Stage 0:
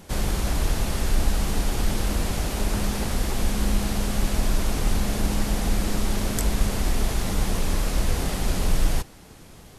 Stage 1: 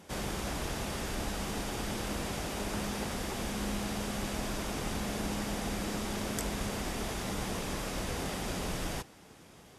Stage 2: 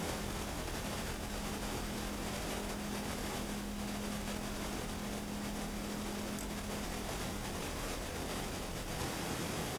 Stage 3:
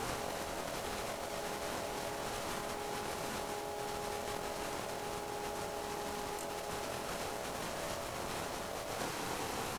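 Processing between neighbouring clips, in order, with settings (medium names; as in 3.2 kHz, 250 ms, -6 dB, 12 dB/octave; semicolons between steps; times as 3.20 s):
high-pass 180 Hz 6 dB/octave; treble shelf 10 kHz -8 dB; band-stop 4.2 kHz, Q 16; trim -5 dB
compressor with a negative ratio -46 dBFS, ratio -1; added noise pink -64 dBFS; doubling 24 ms -5.5 dB; trim +5 dB
ring modulator 620 Hz; trim +2.5 dB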